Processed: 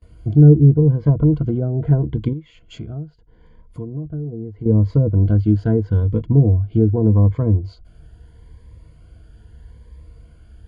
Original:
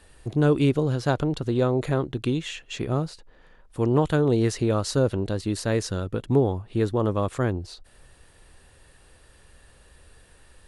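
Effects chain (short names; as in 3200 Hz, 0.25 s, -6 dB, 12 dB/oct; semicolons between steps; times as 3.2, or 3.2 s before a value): HPF 52 Hz 12 dB/oct; treble ducked by the level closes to 550 Hz, closed at -18 dBFS; RIAA curve playback; gate with hold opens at -45 dBFS; ripple EQ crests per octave 1.8, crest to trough 12 dB; 2.33–4.66 compressor 2.5:1, threshold -32 dBFS, peak gain reduction 17 dB; cascading phaser rising 0.79 Hz; gain -1 dB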